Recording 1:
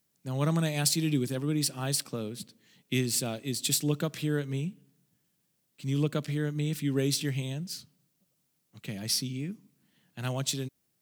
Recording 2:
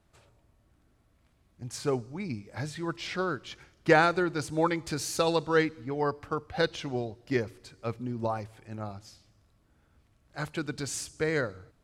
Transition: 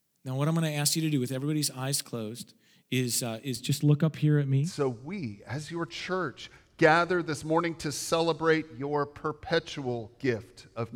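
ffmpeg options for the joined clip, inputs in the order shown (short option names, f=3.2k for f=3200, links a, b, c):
-filter_complex "[0:a]asettb=1/sr,asplit=3[a][b][c];[a]atrim=end=3.564[d];[b]atrim=start=3.56:end=4.74,asetpts=PTS-STARTPTS,afade=t=in:d=0.004:c=qsin,afade=t=out:st=1.176:d=0.004:c=qsin,bass=f=250:g=9,treble=f=4k:g=-11[e];[c]atrim=start=4.736[f];[d][e]acrossfade=d=0.004:c1=hsin:c2=qsin[g];[g][f]acrossfade=d=0.004:c1=qsin:c2=hsin,apad=whole_dur=10.95,atrim=end=10.95,atrim=end=4.74,asetpts=PTS-STARTPTS[h];[1:a]atrim=start=1.65:end=8.02,asetpts=PTS-STARTPTS[i];[h][i]acrossfade=d=0.16:c1=tri:c2=tri"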